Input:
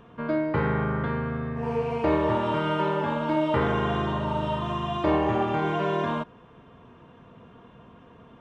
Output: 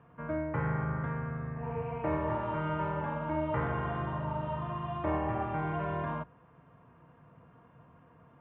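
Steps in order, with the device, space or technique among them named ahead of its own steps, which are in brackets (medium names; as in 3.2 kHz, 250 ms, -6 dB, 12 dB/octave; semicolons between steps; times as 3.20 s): sub-octave bass pedal (octave divider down 2 oct, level -4 dB; cabinet simulation 77–2300 Hz, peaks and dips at 150 Hz +5 dB, 220 Hz -8 dB, 400 Hz -8 dB); trim -7 dB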